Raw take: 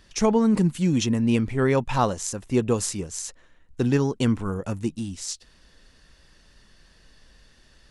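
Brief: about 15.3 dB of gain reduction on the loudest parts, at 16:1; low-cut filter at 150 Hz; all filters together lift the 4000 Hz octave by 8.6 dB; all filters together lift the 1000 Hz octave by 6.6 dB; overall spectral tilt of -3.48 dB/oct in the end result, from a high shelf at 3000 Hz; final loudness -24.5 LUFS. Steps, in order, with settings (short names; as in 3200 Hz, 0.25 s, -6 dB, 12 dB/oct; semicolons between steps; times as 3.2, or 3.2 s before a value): HPF 150 Hz; bell 1000 Hz +7 dB; high shelf 3000 Hz +5.5 dB; bell 4000 Hz +6.5 dB; compressor 16:1, threshold -25 dBFS; gain +5.5 dB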